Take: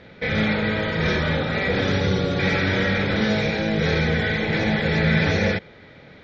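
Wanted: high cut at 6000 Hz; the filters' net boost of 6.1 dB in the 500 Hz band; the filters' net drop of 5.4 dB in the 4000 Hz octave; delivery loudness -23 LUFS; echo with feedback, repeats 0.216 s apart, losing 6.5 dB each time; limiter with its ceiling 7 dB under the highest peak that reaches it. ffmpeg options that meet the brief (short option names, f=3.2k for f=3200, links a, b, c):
-af "lowpass=6k,equalizer=f=500:t=o:g=7,equalizer=f=4k:t=o:g=-6,alimiter=limit=-13.5dB:level=0:latency=1,aecho=1:1:216|432|648|864|1080|1296:0.473|0.222|0.105|0.0491|0.0231|0.0109,volume=-1.5dB"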